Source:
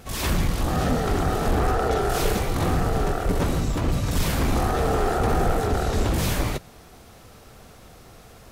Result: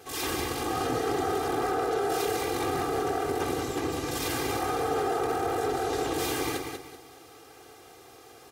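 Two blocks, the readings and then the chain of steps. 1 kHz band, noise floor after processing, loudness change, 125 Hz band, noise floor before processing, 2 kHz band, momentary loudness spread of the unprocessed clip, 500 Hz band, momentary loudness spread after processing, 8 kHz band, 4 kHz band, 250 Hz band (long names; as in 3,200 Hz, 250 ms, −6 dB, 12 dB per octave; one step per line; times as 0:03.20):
−2.5 dB, −51 dBFS, −5.0 dB, −15.5 dB, −48 dBFS, −3.5 dB, 2 LU, −2.5 dB, 3 LU, −2.5 dB, −2.5 dB, −6.0 dB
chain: sub-octave generator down 1 octave, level +3 dB
high-pass filter 250 Hz 12 dB per octave
comb filter 2.5 ms, depth 90%
brickwall limiter −15.5 dBFS, peak gain reduction 7 dB
on a send: repeating echo 191 ms, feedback 31%, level −5.5 dB
on the sum: level −5 dB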